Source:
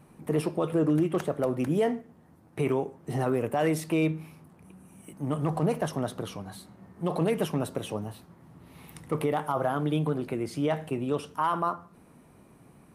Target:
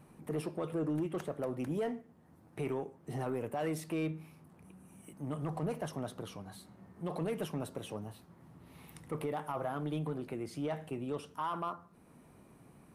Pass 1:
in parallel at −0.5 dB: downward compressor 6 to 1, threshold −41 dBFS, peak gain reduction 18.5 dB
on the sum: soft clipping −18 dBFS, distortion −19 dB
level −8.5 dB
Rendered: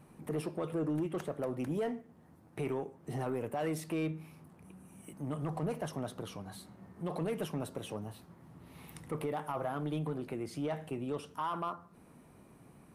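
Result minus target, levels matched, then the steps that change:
downward compressor: peak gain reduction −9.5 dB
change: downward compressor 6 to 1, threshold −52.5 dBFS, peak gain reduction 28 dB

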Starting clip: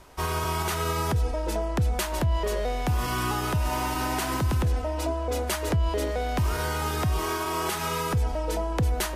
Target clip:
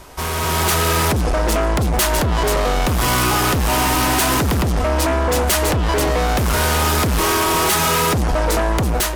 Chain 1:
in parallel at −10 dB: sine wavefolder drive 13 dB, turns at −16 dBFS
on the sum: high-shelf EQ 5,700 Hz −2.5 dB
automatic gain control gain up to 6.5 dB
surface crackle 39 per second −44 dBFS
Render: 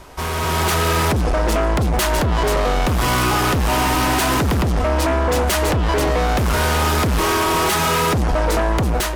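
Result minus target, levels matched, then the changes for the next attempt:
8,000 Hz band −3.5 dB
change: high-shelf EQ 5,700 Hz +4 dB

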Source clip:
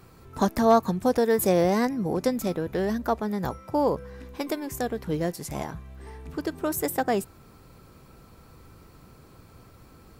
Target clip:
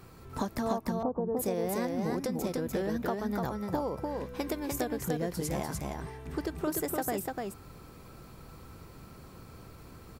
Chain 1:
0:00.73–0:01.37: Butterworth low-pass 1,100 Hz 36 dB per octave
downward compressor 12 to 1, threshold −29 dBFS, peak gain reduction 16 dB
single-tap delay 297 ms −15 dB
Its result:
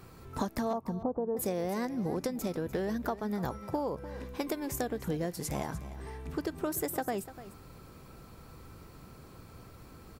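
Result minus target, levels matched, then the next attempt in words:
echo-to-direct −12 dB
0:00.73–0:01.37: Butterworth low-pass 1,100 Hz 36 dB per octave
downward compressor 12 to 1, threshold −29 dBFS, peak gain reduction 16 dB
single-tap delay 297 ms −3 dB

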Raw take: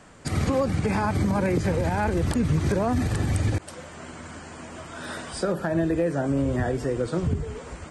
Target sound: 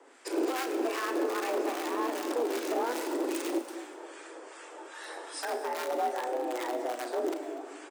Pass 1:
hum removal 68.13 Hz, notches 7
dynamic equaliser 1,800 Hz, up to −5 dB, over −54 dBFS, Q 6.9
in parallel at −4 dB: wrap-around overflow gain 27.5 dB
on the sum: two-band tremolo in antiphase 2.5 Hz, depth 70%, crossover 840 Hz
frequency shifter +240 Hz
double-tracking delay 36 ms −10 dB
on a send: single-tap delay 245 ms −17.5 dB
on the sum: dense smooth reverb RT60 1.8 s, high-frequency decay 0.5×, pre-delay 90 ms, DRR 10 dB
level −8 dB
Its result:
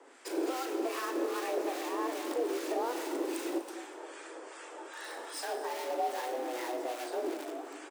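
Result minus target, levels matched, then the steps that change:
wrap-around overflow: distortion +26 dB
change: wrap-around overflow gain 18 dB

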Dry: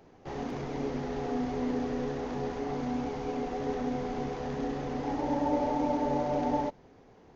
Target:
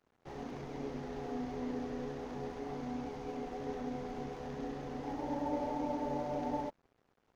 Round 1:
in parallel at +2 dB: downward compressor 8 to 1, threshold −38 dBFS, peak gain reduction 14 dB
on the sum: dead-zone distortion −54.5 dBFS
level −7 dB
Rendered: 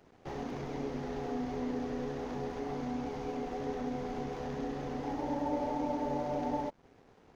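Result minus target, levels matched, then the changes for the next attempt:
downward compressor: peak gain reduction +14 dB
remove: downward compressor 8 to 1, threshold −38 dBFS, peak gain reduction 14 dB

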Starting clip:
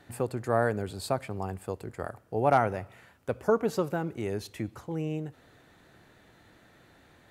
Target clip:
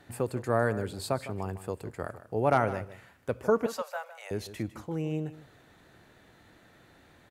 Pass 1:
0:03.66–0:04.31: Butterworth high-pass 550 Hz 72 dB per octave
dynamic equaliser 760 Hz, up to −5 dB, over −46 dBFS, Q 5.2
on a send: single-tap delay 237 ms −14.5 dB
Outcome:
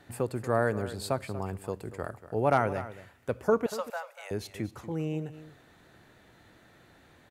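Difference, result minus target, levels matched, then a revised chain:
echo 82 ms late
0:03.66–0:04.31: Butterworth high-pass 550 Hz 72 dB per octave
dynamic equaliser 760 Hz, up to −5 dB, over −46 dBFS, Q 5.2
on a send: single-tap delay 155 ms −14.5 dB

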